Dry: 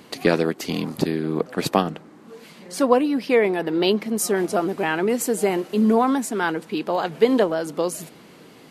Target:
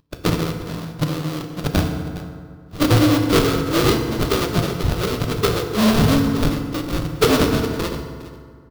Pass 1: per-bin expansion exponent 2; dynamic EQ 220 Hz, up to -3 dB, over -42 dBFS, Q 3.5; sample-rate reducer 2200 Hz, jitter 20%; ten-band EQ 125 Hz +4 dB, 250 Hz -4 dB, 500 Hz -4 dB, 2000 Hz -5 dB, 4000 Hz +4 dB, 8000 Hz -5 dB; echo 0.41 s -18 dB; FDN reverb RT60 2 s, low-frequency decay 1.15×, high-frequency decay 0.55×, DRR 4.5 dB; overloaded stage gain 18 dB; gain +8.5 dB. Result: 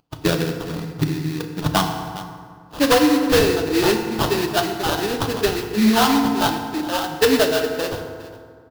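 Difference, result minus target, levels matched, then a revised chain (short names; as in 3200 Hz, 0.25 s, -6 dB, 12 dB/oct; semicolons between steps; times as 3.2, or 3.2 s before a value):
sample-rate reducer: distortion -17 dB
per-bin expansion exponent 2; dynamic EQ 220 Hz, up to -3 dB, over -42 dBFS, Q 3.5; sample-rate reducer 860 Hz, jitter 20%; ten-band EQ 125 Hz +4 dB, 250 Hz -4 dB, 500 Hz -4 dB, 2000 Hz -5 dB, 4000 Hz +4 dB, 8000 Hz -5 dB; echo 0.41 s -18 dB; FDN reverb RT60 2 s, low-frequency decay 1.15×, high-frequency decay 0.55×, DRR 4.5 dB; overloaded stage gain 18 dB; gain +8.5 dB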